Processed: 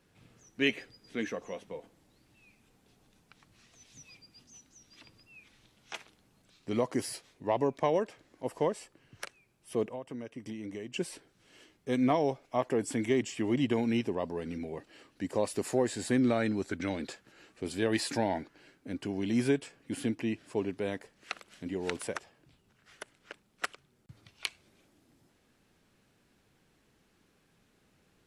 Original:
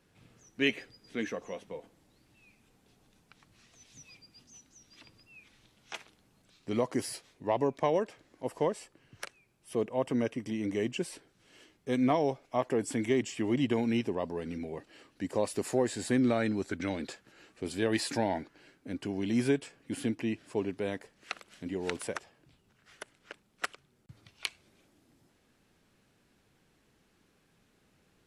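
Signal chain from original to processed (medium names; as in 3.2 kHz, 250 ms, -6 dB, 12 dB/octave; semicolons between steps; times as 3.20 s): 9.88–10.94 s: compression 16:1, threshold -37 dBFS, peak gain reduction 14 dB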